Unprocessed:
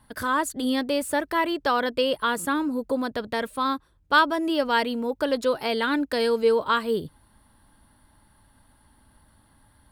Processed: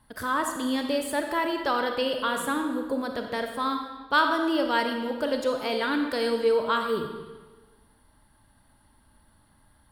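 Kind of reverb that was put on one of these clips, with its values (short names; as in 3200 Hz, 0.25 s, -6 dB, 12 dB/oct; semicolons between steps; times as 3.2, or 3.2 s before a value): digital reverb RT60 1.3 s, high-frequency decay 0.9×, pre-delay 5 ms, DRR 4 dB; gain -3.5 dB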